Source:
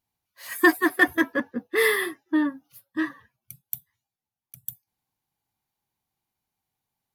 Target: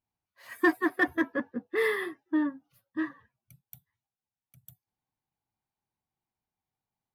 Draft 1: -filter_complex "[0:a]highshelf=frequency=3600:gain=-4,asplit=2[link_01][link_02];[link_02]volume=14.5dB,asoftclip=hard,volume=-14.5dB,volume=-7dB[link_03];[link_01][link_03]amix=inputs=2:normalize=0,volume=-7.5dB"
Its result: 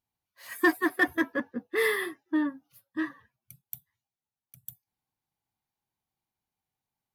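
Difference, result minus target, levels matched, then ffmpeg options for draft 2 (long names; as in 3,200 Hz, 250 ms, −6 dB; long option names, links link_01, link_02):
8,000 Hz band +8.0 dB
-filter_complex "[0:a]highshelf=frequency=3600:gain=-14.5,asplit=2[link_01][link_02];[link_02]volume=14.5dB,asoftclip=hard,volume=-14.5dB,volume=-7dB[link_03];[link_01][link_03]amix=inputs=2:normalize=0,volume=-7.5dB"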